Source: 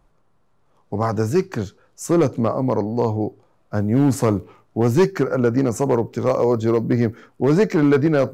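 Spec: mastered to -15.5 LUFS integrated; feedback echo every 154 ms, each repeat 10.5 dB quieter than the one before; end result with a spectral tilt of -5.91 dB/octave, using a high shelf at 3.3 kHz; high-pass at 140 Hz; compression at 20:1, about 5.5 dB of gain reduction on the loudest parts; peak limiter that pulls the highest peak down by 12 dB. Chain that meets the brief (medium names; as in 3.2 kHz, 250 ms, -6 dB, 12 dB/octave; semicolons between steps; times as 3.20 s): high-pass 140 Hz; treble shelf 3.3 kHz -3 dB; compression 20:1, threshold -17 dBFS; peak limiter -20.5 dBFS; feedback delay 154 ms, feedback 30%, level -10.5 dB; trim +14.5 dB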